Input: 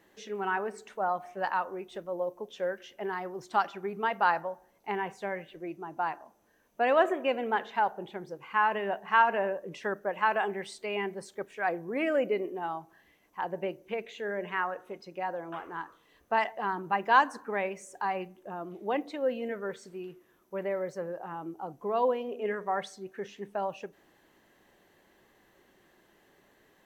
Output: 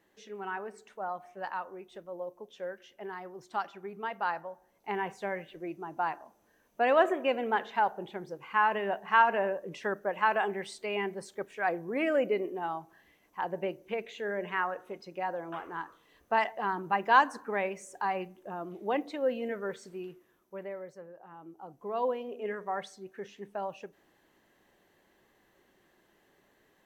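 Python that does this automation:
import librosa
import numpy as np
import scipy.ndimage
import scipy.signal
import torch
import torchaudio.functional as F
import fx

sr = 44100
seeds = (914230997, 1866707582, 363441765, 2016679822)

y = fx.gain(x, sr, db=fx.line((4.46, -6.5), (5.02, 0.0), (20.03, 0.0), (21.13, -13.0), (22.05, -3.5)))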